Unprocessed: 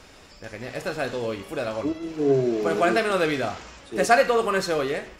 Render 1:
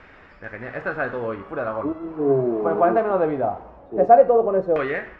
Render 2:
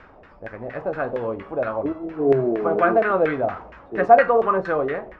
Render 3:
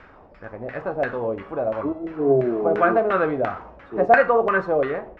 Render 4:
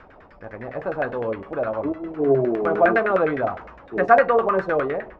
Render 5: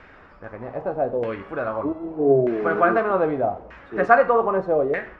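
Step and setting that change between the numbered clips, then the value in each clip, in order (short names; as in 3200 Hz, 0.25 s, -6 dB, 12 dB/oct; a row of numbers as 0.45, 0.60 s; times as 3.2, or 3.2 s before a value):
LFO low-pass, rate: 0.21, 4.3, 2.9, 9.8, 0.81 Hz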